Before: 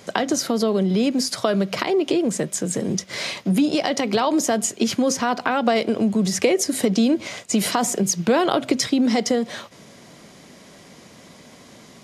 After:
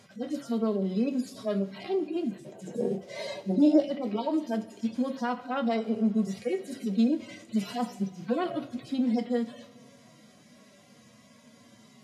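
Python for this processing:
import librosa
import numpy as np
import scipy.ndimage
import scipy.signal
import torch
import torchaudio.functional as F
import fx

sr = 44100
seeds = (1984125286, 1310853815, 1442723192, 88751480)

y = fx.hpss_only(x, sr, part='harmonic')
y = fx.band_shelf(y, sr, hz=530.0, db=13.0, octaves=1.7, at=(2.42, 3.8))
y = fx.rev_double_slope(y, sr, seeds[0], early_s=0.26, late_s=2.4, knee_db=-21, drr_db=6.0)
y = y * librosa.db_to_amplitude(-9.0)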